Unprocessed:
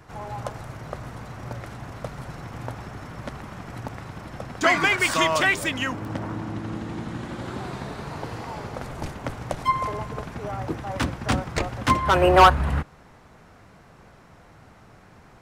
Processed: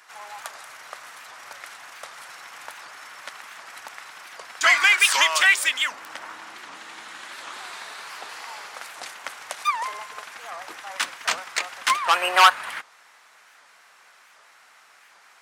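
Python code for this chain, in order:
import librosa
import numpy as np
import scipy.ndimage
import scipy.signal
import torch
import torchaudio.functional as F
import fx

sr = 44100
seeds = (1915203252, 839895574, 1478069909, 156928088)

y = scipy.signal.sosfilt(scipy.signal.butter(2, 1500.0, 'highpass', fs=sr, output='sos'), x)
y = fx.peak_eq(y, sr, hz=9200.0, db=2.5, octaves=0.77)
y = fx.record_warp(y, sr, rpm=78.0, depth_cents=250.0)
y = y * 10.0 ** (6.0 / 20.0)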